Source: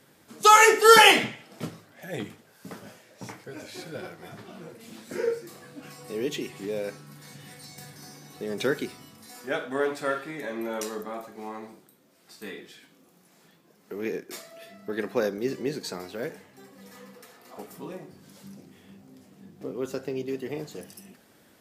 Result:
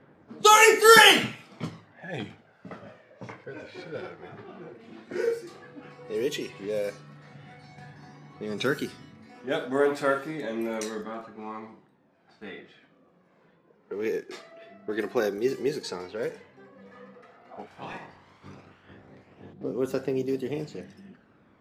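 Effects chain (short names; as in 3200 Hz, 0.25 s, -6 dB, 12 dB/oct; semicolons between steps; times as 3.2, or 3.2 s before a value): 17.66–19.52 spectral limiter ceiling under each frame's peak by 21 dB; phaser 0.1 Hz, delay 2.8 ms, feedback 38%; low-pass opened by the level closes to 1600 Hz, open at -24.5 dBFS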